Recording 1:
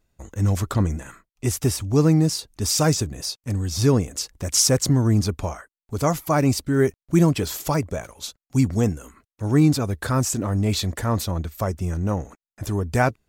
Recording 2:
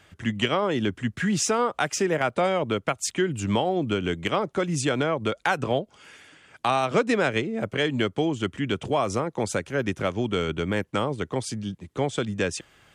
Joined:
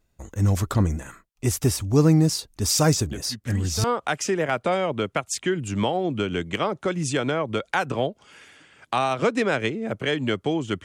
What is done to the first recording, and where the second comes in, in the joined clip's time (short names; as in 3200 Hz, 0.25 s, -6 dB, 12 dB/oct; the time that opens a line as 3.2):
recording 1
3.11 add recording 2 from 0.83 s 0.73 s -10 dB
3.84 switch to recording 2 from 1.56 s